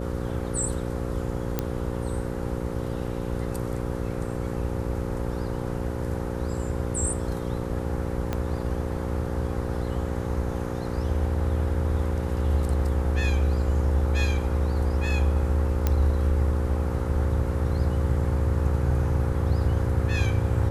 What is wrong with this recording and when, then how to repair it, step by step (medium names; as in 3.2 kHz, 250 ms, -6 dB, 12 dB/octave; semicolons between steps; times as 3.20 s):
buzz 60 Hz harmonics 9 -31 dBFS
1.59 s: pop -11 dBFS
8.33 s: pop -14 dBFS
15.87 s: pop -10 dBFS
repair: de-click; de-hum 60 Hz, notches 9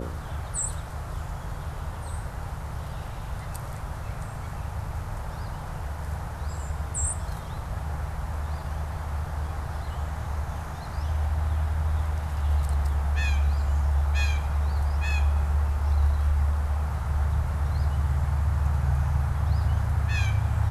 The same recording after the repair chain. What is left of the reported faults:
8.33 s: pop